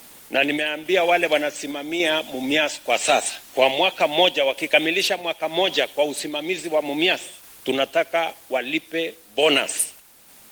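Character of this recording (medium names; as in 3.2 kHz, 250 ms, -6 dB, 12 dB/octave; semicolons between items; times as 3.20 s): a quantiser's noise floor 8-bit, dither triangular; random-step tremolo; Opus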